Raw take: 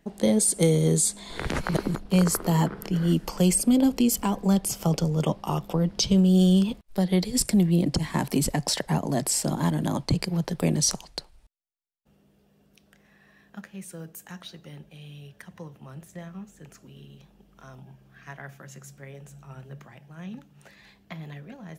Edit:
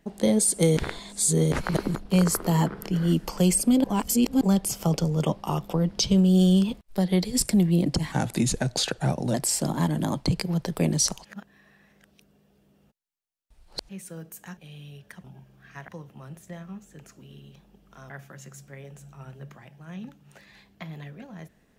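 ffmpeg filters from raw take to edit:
-filter_complex "[0:a]asplit=13[s0][s1][s2][s3][s4][s5][s6][s7][s8][s9][s10][s11][s12];[s0]atrim=end=0.772[s13];[s1]atrim=start=0.768:end=1.522,asetpts=PTS-STARTPTS,areverse[s14];[s2]atrim=start=1.518:end=3.842[s15];[s3]atrim=start=3.838:end=4.412,asetpts=PTS-STARTPTS,areverse[s16];[s4]atrim=start=4.408:end=8.124[s17];[s5]atrim=start=8.12:end=9.17,asetpts=PTS-STARTPTS,asetrate=37926,aresample=44100,atrim=end_sample=53843,asetpts=PTS-STARTPTS[s18];[s6]atrim=start=9.166:end=11.082[s19];[s7]atrim=start=11.078:end=13.722,asetpts=PTS-STARTPTS,areverse[s20];[s8]atrim=start=13.718:end=14.402[s21];[s9]atrim=start=14.868:end=15.542[s22];[s10]atrim=start=17.758:end=18.402[s23];[s11]atrim=start=15.538:end=17.762[s24];[s12]atrim=start=18.398[s25];[s13][s14]acrossfade=d=0.004:c1=hsin:c2=hsin[s26];[s26][s15]acrossfade=d=0.004:c1=hsin:c2=hsin[s27];[s27][s16]acrossfade=d=0.004:c1=hsin:c2=hsin[s28];[s28][s17]acrossfade=d=0.004:c1=hsin:c2=hsin[s29];[s29][s18]acrossfade=d=0.004:c1=hsin:c2=hsin[s30];[s30][s19]acrossfade=d=0.004:c1=hsin:c2=hsin[s31];[s31][s20]acrossfade=d=0.004:c1=hsin:c2=hsin[s32];[s32][s21]acrossfade=d=0.004:c1=hsin:c2=hsin[s33];[s33][s22]acrossfade=d=0.004:c1=hsin:c2=hsin[s34];[s34][s23]acrossfade=d=0.004:c1=hsin:c2=hsin[s35];[s35][s24]acrossfade=d=0.004:c1=hsin:c2=hsin[s36];[s36][s25]acrossfade=d=0.004:c1=hsin:c2=hsin"

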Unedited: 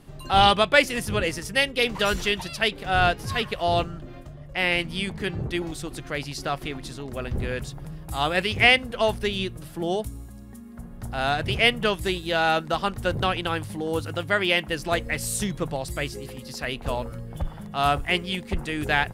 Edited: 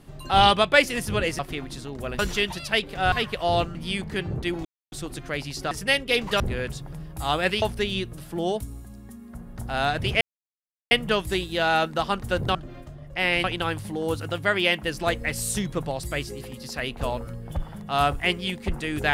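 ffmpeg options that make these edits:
-filter_complex "[0:a]asplit=12[s0][s1][s2][s3][s4][s5][s6][s7][s8][s9][s10][s11];[s0]atrim=end=1.392[s12];[s1]atrim=start=6.518:end=7.322[s13];[s2]atrim=start=2.078:end=3.012[s14];[s3]atrim=start=3.308:end=3.942[s15];[s4]atrim=start=4.828:end=5.73,asetpts=PTS-STARTPTS,afade=t=out:st=0.898:d=0.004:c=hsin,apad=pad_dur=0.27[s16];[s5]atrim=start=5.73:end=6.522,asetpts=PTS-STARTPTS,afade=t=in:d=0.004:c=hsin[s17];[s6]atrim=start=1.388:end=2.082[s18];[s7]atrim=start=7.318:end=8.542[s19];[s8]atrim=start=9.058:end=11.65,asetpts=PTS-STARTPTS,afade=t=out:st=2.588:d=0.004:c=hsin,apad=pad_dur=0.7[s20];[s9]atrim=start=11.65:end=13.292,asetpts=PTS-STARTPTS,afade=t=in:d=0.004:c=hsin[s21];[s10]atrim=start=3.938:end=4.832[s22];[s11]atrim=start=13.288[s23];[s12][s13]acrossfade=d=0.004:c1=hsin:c2=hsin[s24];[s24][s14]acrossfade=d=0.004:c1=hsin:c2=hsin[s25];[s25][s15]acrossfade=d=0.004:c1=hsin:c2=hsin[s26];[s16][s17]concat=n=2:v=0:a=1[s27];[s26][s27]acrossfade=d=0.004:c1=hsin:c2=hsin[s28];[s28][s18]acrossfade=d=0.004:c1=hsin:c2=hsin[s29];[s29][s19]acrossfade=d=0.004:c1=hsin:c2=hsin[s30];[s20][s21]concat=n=2:v=0:a=1[s31];[s30][s31]acrossfade=d=0.004:c1=hsin:c2=hsin[s32];[s32][s22]acrossfade=d=0.004:c1=hsin:c2=hsin[s33];[s33][s23]acrossfade=d=0.004:c1=hsin:c2=hsin"

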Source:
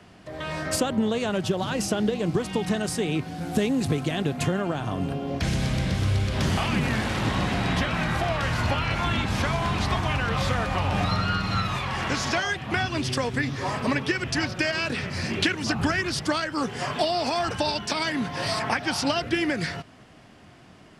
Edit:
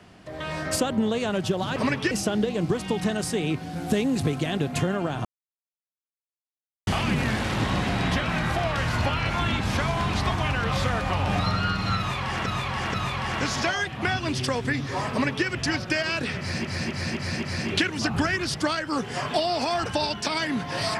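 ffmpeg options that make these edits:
-filter_complex "[0:a]asplit=11[s0][s1][s2][s3][s4][s5][s6][s7][s8][s9][s10];[s0]atrim=end=1.762[s11];[s1]atrim=start=13.798:end=14.152[s12];[s2]atrim=start=1.758:end=4.9,asetpts=PTS-STARTPTS,afade=t=out:st=3.138:d=0.004:c=hsin[s13];[s3]atrim=start=4.9:end=6.52,asetpts=PTS-STARTPTS,volume=0[s14];[s4]atrim=start=6.52:end=12.112,asetpts=PTS-STARTPTS,afade=t=in:d=0.004:c=hsin[s15];[s5]atrim=start=11.628:end=12.112[s16];[s6]atrim=start=11.628:end=15.342[s17];[s7]atrim=start=15.078:end=15.342[s18];[s8]atrim=start=15.078:end=15.342[s19];[s9]atrim=start=15.078:end=15.342[s20];[s10]atrim=start=15.078[s21];[s11][s12]acrossfade=d=0.004:c1=hsin:c2=hsin[s22];[s13][s14][s15]concat=n=3:v=0:a=1[s23];[s22][s23]acrossfade=d=0.004:c1=hsin:c2=hsin[s24];[s24][s16]acrossfade=d=0.004:c1=hsin:c2=hsin[s25];[s25][s17]acrossfade=d=0.004:c1=hsin:c2=hsin[s26];[s26][s18]acrossfade=d=0.004:c1=hsin:c2=hsin[s27];[s27][s19]acrossfade=d=0.004:c1=hsin:c2=hsin[s28];[s28][s20]acrossfade=d=0.004:c1=hsin:c2=hsin[s29];[s29][s21]acrossfade=d=0.004:c1=hsin:c2=hsin"

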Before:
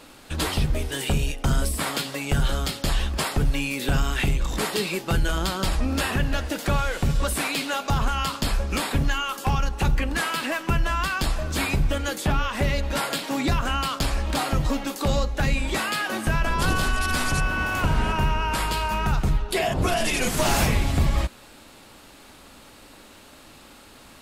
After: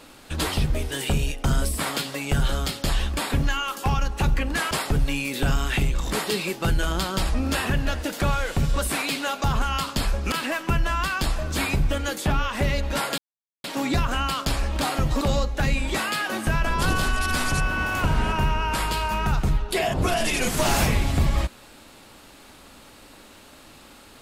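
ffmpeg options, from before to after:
-filter_complex "[0:a]asplit=6[s0][s1][s2][s3][s4][s5];[s0]atrim=end=3.172[s6];[s1]atrim=start=8.778:end=10.322[s7];[s2]atrim=start=3.168:end=8.782[s8];[s3]atrim=start=10.318:end=13.18,asetpts=PTS-STARTPTS,afade=t=out:st=2.858:d=0.004:c=hsin,apad=pad_dur=0.46[s9];[s4]atrim=start=13.18:end=14.752,asetpts=PTS-STARTPTS,afade=t=in:d=0.004:c=hsin[s10];[s5]atrim=start=15.008[s11];[s6][s7]acrossfade=d=0.004:c1=hsin:c2=hsin[s12];[s12][s8]acrossfade=d=0.004:c1=hsin:c2=hsin[s13];[s9][s10]concat=n=2:v=0:a=1[s14];[s13][s14]acrossfade=d=0.004:c1=hsin:c2=hsin[s15];[s15][s11]acrossfade=d=0.004:c1=hsin:c2=hsin"

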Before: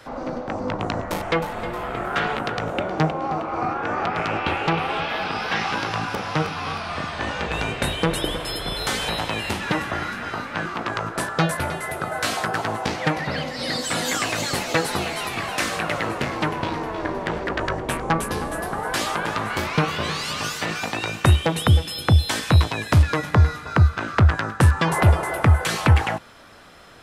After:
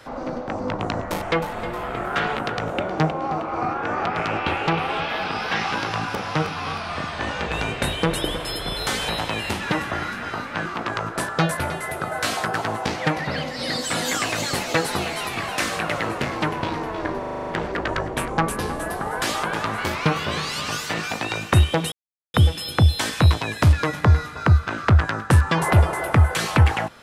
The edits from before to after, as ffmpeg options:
-filter_complex "[0:a]asplit=9[s0][s1][s2][s3][s4][s5][s6][s7][s8];[s0]atrim=end=17.232[s9];[s1]atrim=start=17.188:end=17.232[s10];[s2]atrim=start=17.188:end=17.232[s11];[s3]atrim=start=17.188:end=17.232[s12];[s4]atrim=start=17.188:end=17.232[s13];[s5]atrim=start=17.188:end=17.232[s14];[s6]atrim=start=17.188:end=17.232[s15];[s7]atrim=start=17.188:end=21.64,asetpts=PTS-STARTPTS,afade=t=out:st=4.448:d=0.004:c=hsin,apad=pad_dur=0.42[s16];[s8]atrim=start=21.64,asetpts=PTS-STARTPTS,afade=t=in:d=0.004:c=hsin[s17];[s9][s10]acrossfade=d=0.004:c1=hsin:c2=hsin[s18];[s18][s11]acrossfade=d=0.004:c1=hsin:c2=hsin[s19];[s19][s12]acrossfade=d=0.004:c1=hsin:c2=hsin[s20];[s20][s13]acrossfade=d=0.004:c1=hsin:c2=hsin[s21];[s21][s14]acrossfade=d=0.004:c1=hsin:c2=hsin[s22];[s22][s15]acrossfade=d=0.004:c1=hsin:c2=hsin[s23];[s16][s17]concat=n=2:v=0:a=1[s24];[s23][s24]acrossfade=d=0.004:c1=hsin:c2=hsin"

